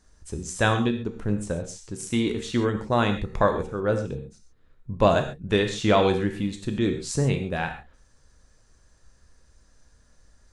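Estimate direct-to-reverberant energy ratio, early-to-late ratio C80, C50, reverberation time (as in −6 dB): 5.0 dB, 11.0 dB, 8.5 dB, non-exponential decay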